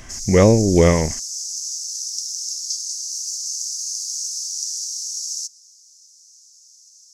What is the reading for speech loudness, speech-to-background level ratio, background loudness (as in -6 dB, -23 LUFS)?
-15.5 LUFS, 9.5 dB, -25.0 LUFS